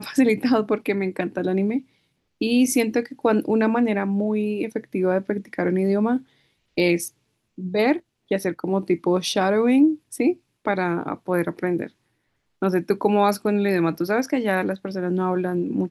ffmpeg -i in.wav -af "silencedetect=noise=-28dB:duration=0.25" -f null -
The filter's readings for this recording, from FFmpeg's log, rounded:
silence_start: 1.79
silence_end: 2.41 | silence_duration: 0.63
silence_start: 6.18
silence_end: 6.78 | silence_duration: 0.60
silence_start: 7.08
silence_end: 7.58 | silence_duration: 0.51
silence_start: 7.97
silence_end: 8.31 | silence_duration: 0.34
silence_start: 10.33
silence_end: 10.67 | silence_duration: 0.34
silence_start: 11.86
silence_end: 12.62 | silence_duration: 0.76